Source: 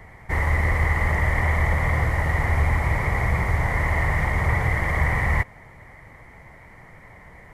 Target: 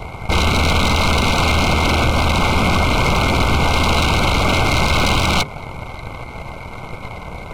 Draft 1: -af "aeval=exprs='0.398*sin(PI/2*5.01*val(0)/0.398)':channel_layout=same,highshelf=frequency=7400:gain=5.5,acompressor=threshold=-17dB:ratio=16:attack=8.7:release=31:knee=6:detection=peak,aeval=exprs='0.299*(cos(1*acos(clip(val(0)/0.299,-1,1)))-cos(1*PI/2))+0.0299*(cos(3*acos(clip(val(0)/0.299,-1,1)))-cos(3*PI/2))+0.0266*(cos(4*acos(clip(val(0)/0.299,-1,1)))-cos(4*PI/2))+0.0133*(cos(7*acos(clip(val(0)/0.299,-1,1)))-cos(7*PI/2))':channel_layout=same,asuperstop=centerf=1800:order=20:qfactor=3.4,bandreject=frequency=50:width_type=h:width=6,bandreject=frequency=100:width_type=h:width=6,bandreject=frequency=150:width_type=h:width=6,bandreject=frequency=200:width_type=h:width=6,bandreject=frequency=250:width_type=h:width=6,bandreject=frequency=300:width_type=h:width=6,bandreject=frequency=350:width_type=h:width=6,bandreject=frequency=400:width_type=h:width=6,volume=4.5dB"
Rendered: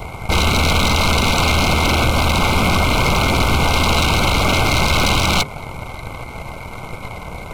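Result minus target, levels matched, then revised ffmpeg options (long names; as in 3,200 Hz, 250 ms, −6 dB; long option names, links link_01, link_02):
8,000 Hz band +2.5 dB
-af "aeval=exprs='0.398*sin(PI/2*5.01*val(0)/0.398)':channel_layout=same,highshelf=frequency=7400:gain=-4.5,acompressor=threshold=-17dB:ratio=16:attack=8.7:release=31:knee=6:detection=peak,aeval=exprs='0.299*(cos(1*acos(clip(val(0)/0.299,-1,1)))-cos(1*PI/2))+0.0299*(cos(3*acos(clip(val(0)/0.299,-1,1)))-cos(3*PI/2))+0.0266*(cos(4*acos(clip(val(0)/0.299,-1,1)))-cos(4*PI/2))+0.0133*(cos(7*acos(clip(val(0)/0.299,-1,1)))-cos(7*PI/2))':channel_layout=same,asuperstop=centerf=1800:order=20:qfactor=3.4,bandreject=frequency=50:width_type=h:width=6,bandreject=frequency=100:width_type=h:width=6,bandreject=frequency=150:width_type=h:width=6,bandreject=frequency=200:width_type=h:width=6,bandreject=frequency=250:width_type=h:width=6,bandreject=frequency=300:width_type=h:width=6,bandreject=frequency=350:width_type=h:width=6,bandreject=frequency=400:width_type=h:width=6,volume=4.5dB"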